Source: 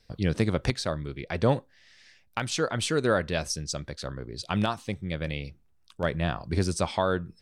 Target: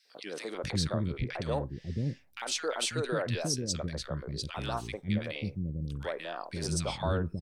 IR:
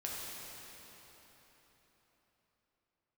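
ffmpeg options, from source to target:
-filter_complex "[0:a]alimiter=limit=-19.5dB:level=0:latency=1:release=21,acrossover=split=340|1500[a][b][c];[b]adelay=50[d];[a]adelay=540[e];[e][d][c]amix=inputs=3:normalize=0"

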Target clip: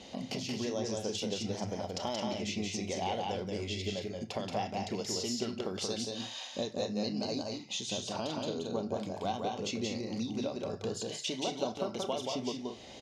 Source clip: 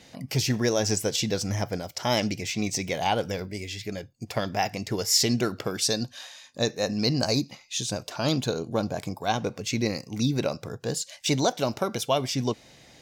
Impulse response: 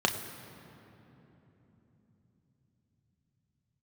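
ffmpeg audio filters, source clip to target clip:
-filter_complex "[0:a]lowpass=6.5k,acompressor=threshold=-38dB:ratio=6,aecho=1:1:177.8|221.6:0.708|0.355,asplit=2[a][b];[1:a]atrim=start_sample=2205,atrim=end_sample=4410[c];[b][c]afir=irnorm=-1:irlink=0,volume=-12.5dB[d];[a][d]amix=inputs=2:normalize=0"

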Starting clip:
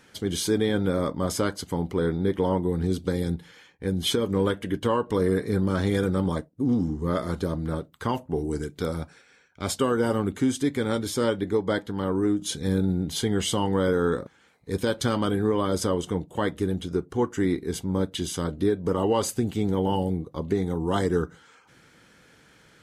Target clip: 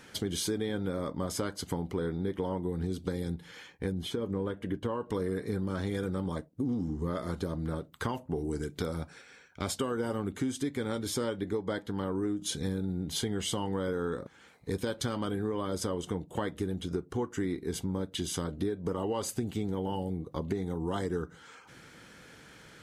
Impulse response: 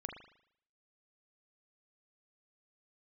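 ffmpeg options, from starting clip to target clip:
-filter_complex "[0:a]acompressor=threshold=-34dB:ratio=4,asettb=1/sr,asplit=3[a][b][c];[a]atrim=end=3.924[d];[b]atrim=start=3.92:end=5.01,asetpts=PTS-STARTPTS,afade=t=in:d=0.004:c=qsin,afade=t=out:st=1.086:d=0.004:c=qsin,highshelf=f=2.1k:g=-10[e];[c]atrim=start=5.006[f];[d][e]acrossfade=d=0.004:c1=hsin:c2=qsin[g];[g][f]acrossfade=d=0.004:c1=qsin:c2=hsin,volume=3dB"

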